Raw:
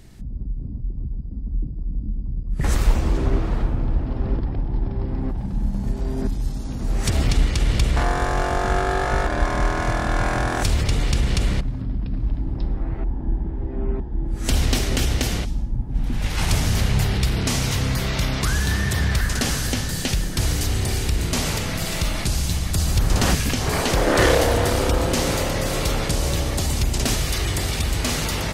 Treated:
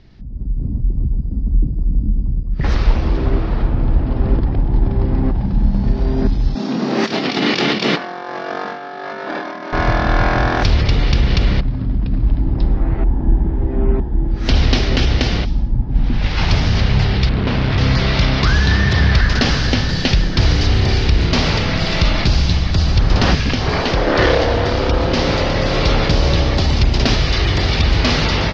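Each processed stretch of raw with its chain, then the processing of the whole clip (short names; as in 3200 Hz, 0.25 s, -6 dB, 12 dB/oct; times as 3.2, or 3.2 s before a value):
6.55–9.73 steep high-pass 180 Hz + doubler 28 ms -3.5 dB + negative-ratio compressor -29 dBFS, ratio -0.5
17.29–17.78 air absorption 270 m + Doppler distortion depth 0.94 ms
whole clip: steep low-pass 5300 Hz 48 dB/oct; AGC; gain -1 dB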